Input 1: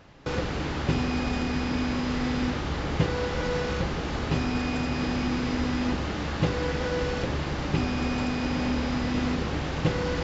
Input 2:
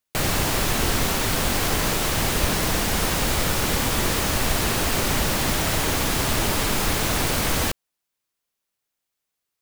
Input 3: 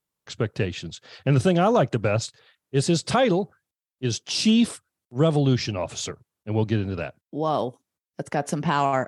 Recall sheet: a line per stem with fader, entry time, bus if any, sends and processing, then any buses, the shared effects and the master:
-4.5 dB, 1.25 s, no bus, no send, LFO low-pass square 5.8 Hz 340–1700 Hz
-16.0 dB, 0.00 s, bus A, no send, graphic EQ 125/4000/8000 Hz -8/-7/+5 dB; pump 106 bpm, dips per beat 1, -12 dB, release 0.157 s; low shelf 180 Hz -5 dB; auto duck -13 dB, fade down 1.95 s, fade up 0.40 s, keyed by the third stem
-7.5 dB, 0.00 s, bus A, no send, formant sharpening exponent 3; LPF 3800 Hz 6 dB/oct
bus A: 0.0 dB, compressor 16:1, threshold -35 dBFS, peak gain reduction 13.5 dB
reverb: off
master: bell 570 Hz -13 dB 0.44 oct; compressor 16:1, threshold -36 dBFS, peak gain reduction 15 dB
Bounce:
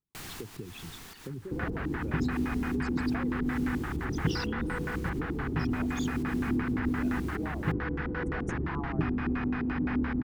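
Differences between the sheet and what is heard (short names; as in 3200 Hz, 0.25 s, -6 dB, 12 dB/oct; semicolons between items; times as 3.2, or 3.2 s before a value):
stem 2: missing graphic EQ 125/4000/8000 Hz -8/-7/+5 dB; master: missing compressor 16:1, threshold -36 dBFS, peak gain reduction 15 dB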